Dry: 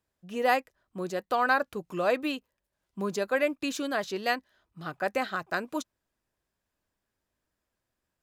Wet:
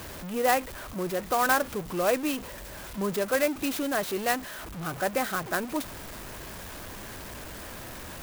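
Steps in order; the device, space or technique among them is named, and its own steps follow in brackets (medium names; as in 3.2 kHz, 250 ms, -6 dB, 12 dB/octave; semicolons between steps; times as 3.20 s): early CD player with a faulty converter (jump at every zero crossing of -33.5 dBFS; sampling jitter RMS 0.048 ms)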